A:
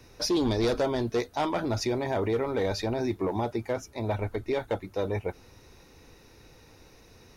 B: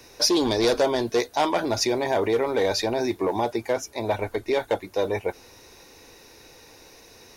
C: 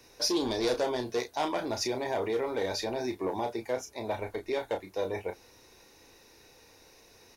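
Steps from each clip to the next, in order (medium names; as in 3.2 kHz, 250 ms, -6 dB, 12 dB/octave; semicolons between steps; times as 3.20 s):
tone controls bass -11 dB, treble +4 dB; band-stop 1.3 kHz, Q 11; trim +6.5 dB
doubling 32 ms -7.5 dB; trim -8.5 dB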